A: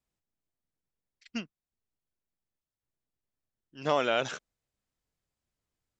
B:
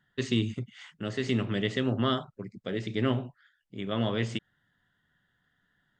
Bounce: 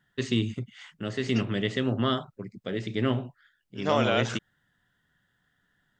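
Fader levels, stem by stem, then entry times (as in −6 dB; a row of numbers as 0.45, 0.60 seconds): +1.5, +1.0 decibels; 0.00, 0.00 seconds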